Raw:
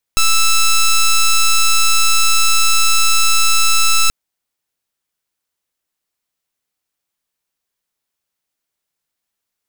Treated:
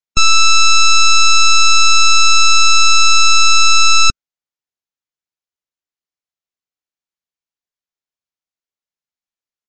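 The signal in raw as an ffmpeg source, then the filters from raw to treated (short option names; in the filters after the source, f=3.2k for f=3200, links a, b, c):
-f lavfi -i "aevalsrc='0.299*(2*lt(mod(1320*t,1),0.09)-1)':d=3.93:s=44100"
-af "afftdn=nr=19:nf=-23,acontrast=55,aresample=16000,aresample=44100"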